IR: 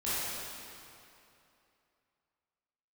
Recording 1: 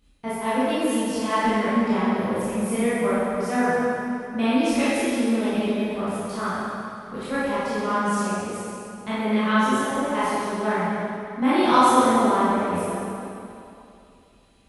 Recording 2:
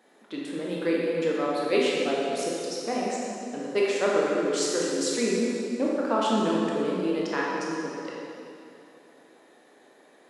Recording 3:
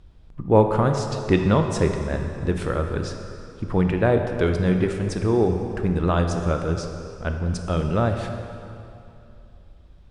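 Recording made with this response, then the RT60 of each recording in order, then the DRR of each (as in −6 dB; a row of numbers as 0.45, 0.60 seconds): 1; 2.8, 2.8, 2.8 seconds; −13.0, −5.0, 4.5 decibels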